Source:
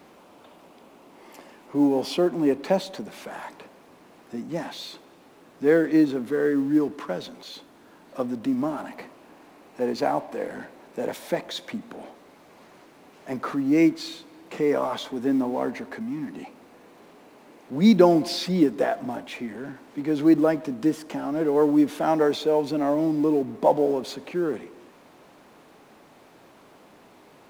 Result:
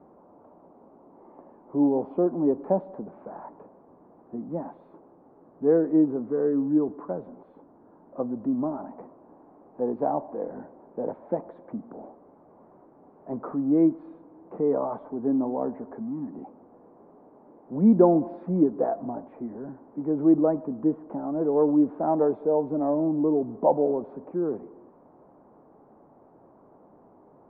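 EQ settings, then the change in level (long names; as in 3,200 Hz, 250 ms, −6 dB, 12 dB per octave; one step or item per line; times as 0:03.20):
low-pass filter 1,000 Hz 24 dB per octave
−1.5 dB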